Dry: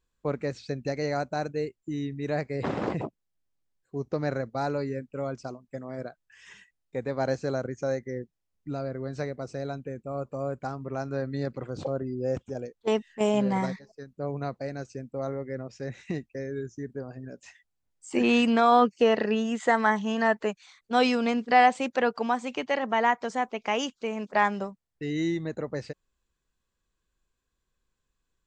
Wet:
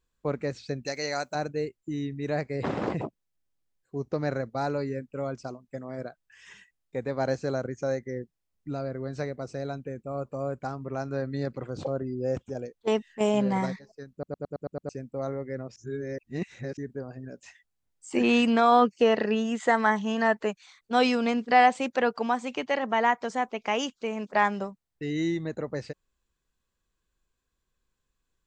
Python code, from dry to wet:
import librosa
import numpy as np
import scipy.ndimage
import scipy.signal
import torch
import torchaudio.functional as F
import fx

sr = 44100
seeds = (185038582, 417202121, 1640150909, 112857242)

y = fx.tilt_eq(x, sr, slope=3.5, at=(0.85, 1.35))
y = fx.edit(y, sr, fx.stutter_over(start_s=14.12, slice_s=0.11, count=7),
    fx.reverse_span(start_s=15.76, length_s=1.01), tone=tone)